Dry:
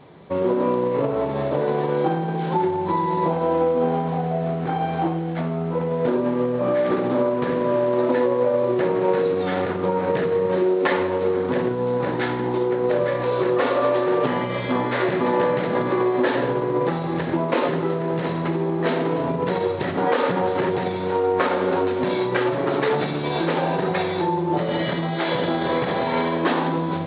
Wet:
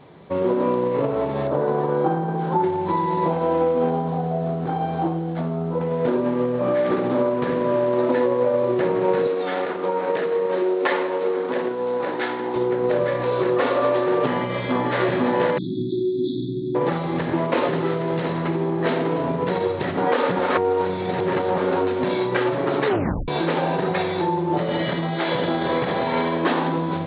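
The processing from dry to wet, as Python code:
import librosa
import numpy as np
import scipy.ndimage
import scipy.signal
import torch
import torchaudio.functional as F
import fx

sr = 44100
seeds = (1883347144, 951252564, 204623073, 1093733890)

y = fx.high_shelf_res(x, sr, hz=1700.0, db=-6.5, q=1.5, at=(1.47, 2.64))
y = fx.peak_eq(y, sr, hz=2200.0, db=-7.5, octaves=1.2, at=(3.9, 5.81))
y = fx.highpass(y, sr, hz=320.0, slope=12, at=(9.27, 12.56))
y = fx.echo_throw(y, sr, start_s=14.36, length_s=0.65, ms=490, feedback_pct=80, wet_db=-5.5)
y = fx.brickwall_bandstop(y, sr, low_hz=390.0, high_hz=3300.0, at=(15.58, 16.75))
y = fx.high_shelf(y, sr, hz=3800.0, db=7.5, at=(17.73, 18.23))
y = fx.edit(y, sr, fx.reverse_span(start_s=20.39, length_s=1.19),
    fx.tape_stop(start_s=22.87, length_s=0.41), tone=tone)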